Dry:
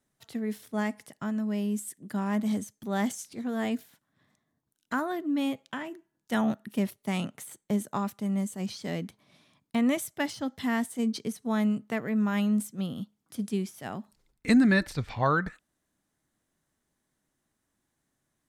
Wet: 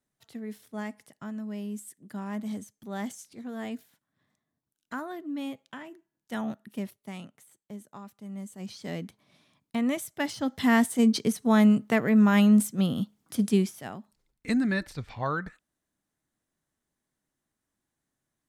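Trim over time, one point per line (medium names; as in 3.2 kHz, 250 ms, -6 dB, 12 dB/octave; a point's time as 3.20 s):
6.80 s -6 dB
7.45 s -14 dB
8.08 s -14 dB
8.89 s -2 dB
10.06 s -2 dB
10.73 s +7 dB
13.60 s +7 dB
14.00 s -5 dB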